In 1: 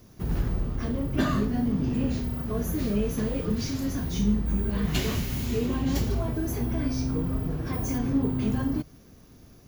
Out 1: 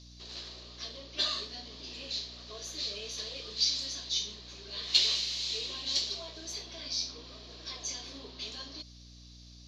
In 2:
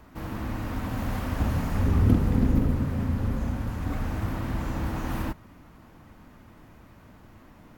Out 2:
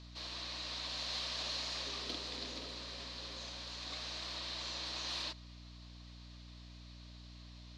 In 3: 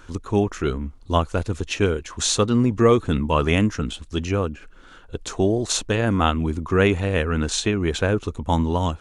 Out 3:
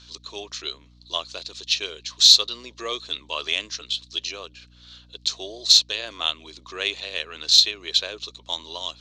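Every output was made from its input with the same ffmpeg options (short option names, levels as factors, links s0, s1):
-af "highpass=f=470:w=0.5412,highpass=f=470:w=1.3066,equalizer=f=480:t=q:w=4:g=-7,equalizer=f=820:t=q:w=4:g=-10,equalizer=f=1400:t=q:w=4:g=-7,equalizer=f=2400:t=q:w=4:g=7,equalizer=f=4100:t=q:w=4:g=7,lowpass=f=4500:w=0.5412,lowpass=f=4500:w=1.3066,aexciter=amount=11.1:drive=5.5:freq=3500,aeval=exprs='val(0)+0.00562*(sin(2*PI*60*n/s)+sin(2*PI*2*60*n/s)/2+sin(2*PI*3*60*n/s)/3+sin(2*PI*4*60*n/s)/4+sin(2*PI*5*60*n/s)/5)':c=same,volume=0.447"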